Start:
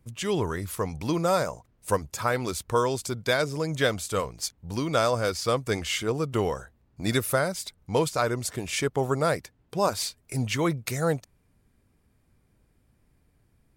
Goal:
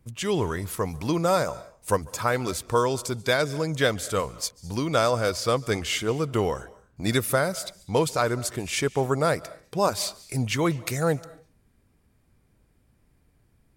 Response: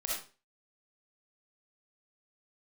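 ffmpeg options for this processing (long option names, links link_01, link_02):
-filter_complex "[0:a]asplit=2[link_01][link_02];[1:a]atrim=start_sample=2205,adelay=143[link_03];[link_02][link_03]afir=irnorm=-1:irlink=0,volume=-23.5dB[link_04];[link_01][link_04]amix=inputs=2:normalize=0,volume=1.5dB"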